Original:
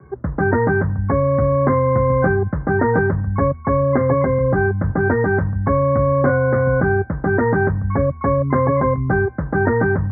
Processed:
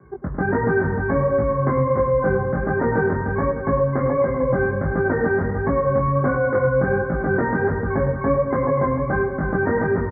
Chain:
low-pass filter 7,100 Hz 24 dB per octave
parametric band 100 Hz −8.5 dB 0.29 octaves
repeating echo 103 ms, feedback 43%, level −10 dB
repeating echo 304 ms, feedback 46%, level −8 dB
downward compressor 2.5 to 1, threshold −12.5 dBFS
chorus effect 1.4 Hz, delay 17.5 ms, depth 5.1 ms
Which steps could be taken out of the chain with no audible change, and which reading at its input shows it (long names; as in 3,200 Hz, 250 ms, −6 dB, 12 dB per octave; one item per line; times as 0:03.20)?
low-pass filter 7,100 Hz: nothing at its input above 1,900 Hz